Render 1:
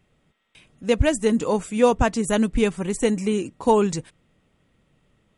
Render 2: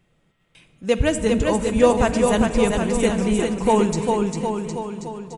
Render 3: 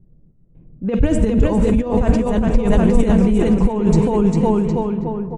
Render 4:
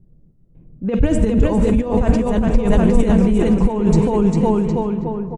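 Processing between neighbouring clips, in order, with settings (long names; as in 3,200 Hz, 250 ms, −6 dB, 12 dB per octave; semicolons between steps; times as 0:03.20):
bouncing-ball delay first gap 400 ms, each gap 0.9×, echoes 5; rectangular room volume 3,800 cubic metres, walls mixed, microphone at 0.78 metres
compressor whose output falls as the input rises −22 dBFS, ratio −1; low-pass that shuts in the quiet parts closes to 350 Hz, open at −18.5 dBFS; spectral tilt −3 dB per octave; level +1 dB
repeating echo 147 ms, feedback 58%, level −23 dB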